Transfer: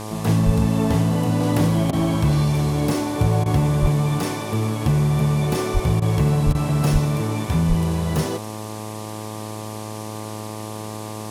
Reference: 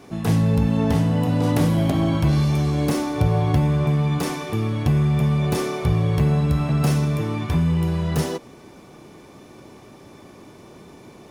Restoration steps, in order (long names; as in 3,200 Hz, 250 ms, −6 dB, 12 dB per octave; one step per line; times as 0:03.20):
hum removal 107.5 Hz, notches 11
high-pass at the plosives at 0:00.45/0:03.81/0:05.73/0:06.45/0:06.92/0:07.68
repair the gap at 0:01.91/0:03.44/0:06.00/0:06.53, 17 ms
noise reduction from a noise print 13 dB